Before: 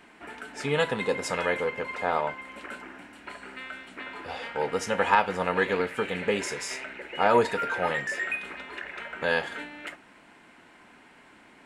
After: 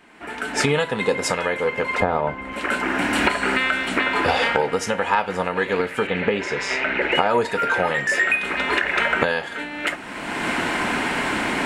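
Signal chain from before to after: recorder AGC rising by 28 dB/s; 2–2.53 tilt -3 dB/oct; 6.07–7.12 LPF 3600 Hz 12 dB/oct; gain +1 dB

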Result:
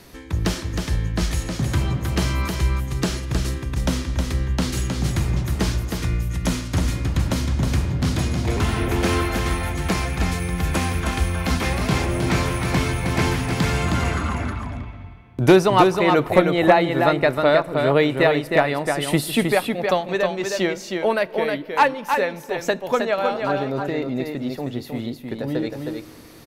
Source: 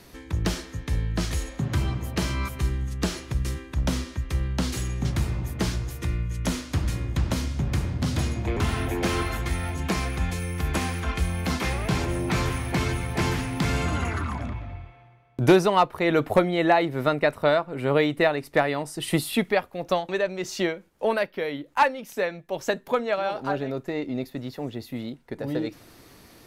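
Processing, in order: echo 0.314 s -5 dB; on a send at -20 dB: reverb RT60 2.6 s, pre-delay 5 ms; on the sum: gain +3.5 dB

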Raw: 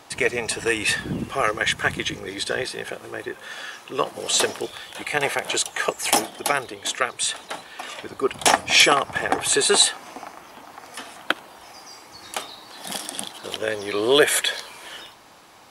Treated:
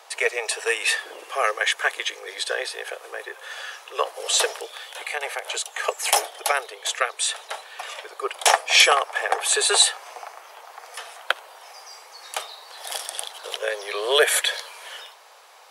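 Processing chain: 4.56–5.84 compressor 2:1, threshold -28 dBFS, peak gain reduction 7 dB; steep high-pass 440 Hz 48 dB/oct

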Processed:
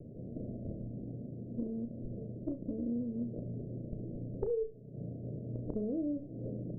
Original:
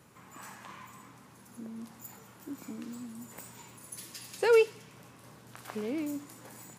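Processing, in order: minimum comb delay 0.58 ms; steep low-pass 660 Hz 96 dB/oct; compressor 12:1, threshold -47 dBFS, peak gain reduction 25 dB; on a send: flutter echo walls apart 5.8 m, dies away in 0.23 s; on the sum: gain +13.5 dB

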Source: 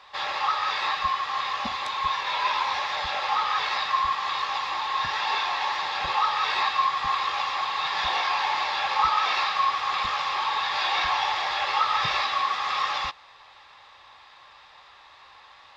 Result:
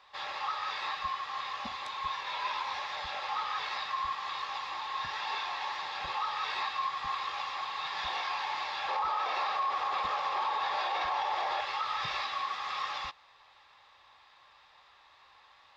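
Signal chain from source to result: 8.88–11.61 bell 550 Hz +12.5 dB 2.2 oct; limiter -14.5 dBFS, peak gain reduction 10.5 dB; gain -9 dB

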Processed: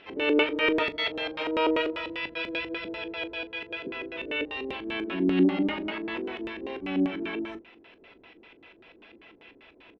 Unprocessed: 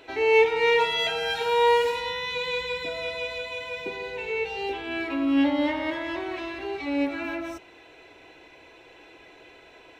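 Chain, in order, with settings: harmoniser -7 st -5 dB, +5 st -4 dB; LFO low-pass square 5.1 Hz 340–2800 Hz; on a send: early reflections 21 ms -15 dB, 39 ms -16.5 dB; on the sum: attack slew limiter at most 440 dB/s; gain -7.5 dB

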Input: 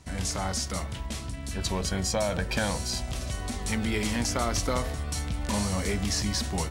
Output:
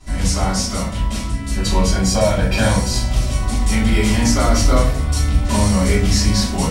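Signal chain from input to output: shoebox room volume 43 m³, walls mixed, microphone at 2.9 m; gain -3.5 dB

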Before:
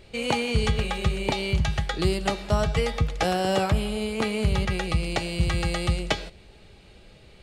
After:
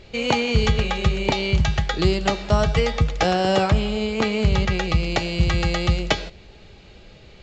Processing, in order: gain +4.5 dB; A-law 128 kbps 16000 Hz

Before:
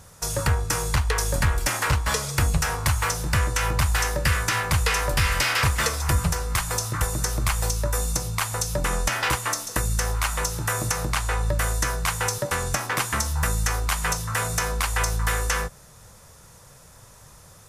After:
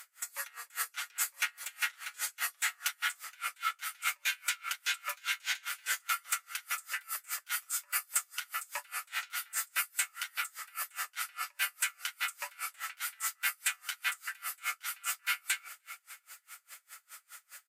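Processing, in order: HPF 970 Hz 24 dB/oct; high shelf 11000 Hz -6 dB; comb 7 ms, depth 60%; reverse; compressor, threshold -32 dBFS, peak gain reduction 12.5 dB; reverse; formant shift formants +5 st; on a send: feedback echo 0.301 s, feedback 56%, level -18 dB; on the sum: dB-linear tremolo 4.9 Hz, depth 32 dB; gain +5.5 dB

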